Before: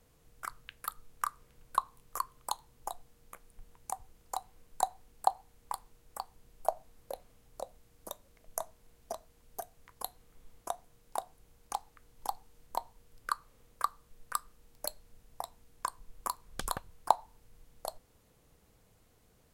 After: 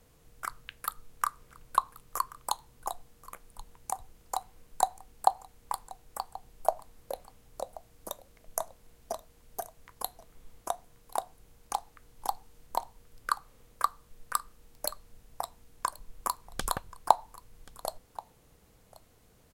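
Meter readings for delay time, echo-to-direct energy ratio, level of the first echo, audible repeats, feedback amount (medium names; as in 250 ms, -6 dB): 1081 ms, -20.0 dB, -20.0 dB, 1, no regular repeats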